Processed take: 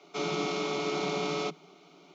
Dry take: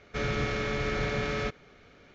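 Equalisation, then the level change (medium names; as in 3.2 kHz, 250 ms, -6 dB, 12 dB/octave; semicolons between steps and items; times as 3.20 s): steep high-pass 160 Hz 96 dB/octave; static phaser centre 340 Hz, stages 8; +5.5 dB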